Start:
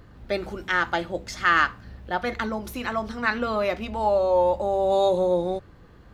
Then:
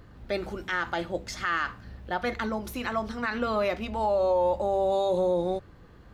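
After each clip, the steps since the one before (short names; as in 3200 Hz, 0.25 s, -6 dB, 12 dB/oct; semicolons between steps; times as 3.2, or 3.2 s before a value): limiter -16 dBFS, peak gain reduction 9 dB; gain -1.5 dB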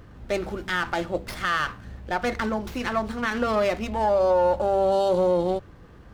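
running maximum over 5 samples; gain +4 dB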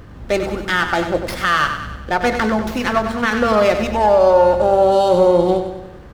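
feedback echo 96 ms, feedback 52%, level -8.5 dB; gain +8 dB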